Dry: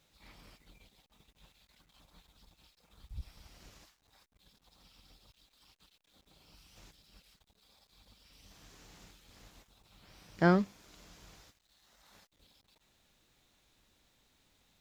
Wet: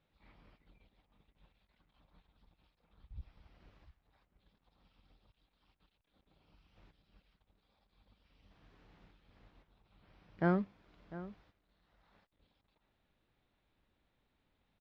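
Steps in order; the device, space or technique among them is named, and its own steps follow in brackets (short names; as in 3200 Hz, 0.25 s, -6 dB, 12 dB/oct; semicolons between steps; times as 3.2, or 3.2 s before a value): shout across a valley (air absorption 370 m; outdoor echo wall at 120 m, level -15 dB); gain -4.5 dB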